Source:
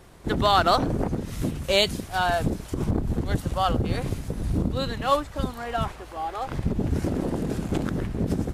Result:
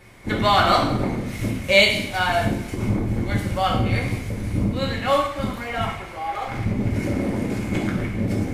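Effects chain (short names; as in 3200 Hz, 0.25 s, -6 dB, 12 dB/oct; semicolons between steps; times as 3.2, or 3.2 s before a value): bell 2200 Hz +15 dB 0.32 oct; two-slope reverb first 0.66 s, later 1.7 s, DRR -2 dB; gain -2 dB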